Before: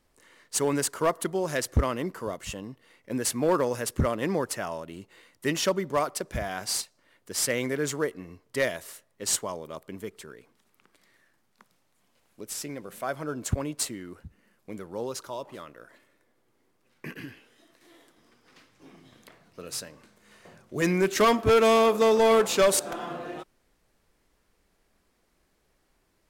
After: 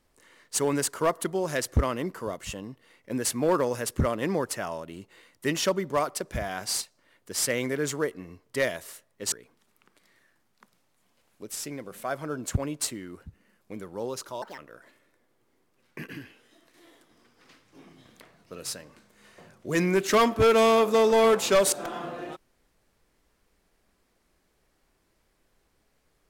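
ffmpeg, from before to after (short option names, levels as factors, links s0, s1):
-filter_complex "[0:a]asplit=4[s0][s1][s2][s3];[s0]atrim=end=9.322[s4];[s1]atrim=start=10.298:end=15.404[s5];[s2]atrim=start=15.4:end=15.65,asetpts=PTS-STARTPTS,asetrate=68796,aresample=44100,atrim=end_sample=7067,asetpts=PTS-STARTPTS[s6];[s3]atrim=start=15.646[s7];[s4][s5]acrossfade=d=0.004:c1=hsin:c2=hsin[s8];[s8][s6]acrossfade=d=0.004:c1=hsin:c2=hsin[s9];[s9][s7]acrossfade=d=0.004:c1=hsin:c2=hsin"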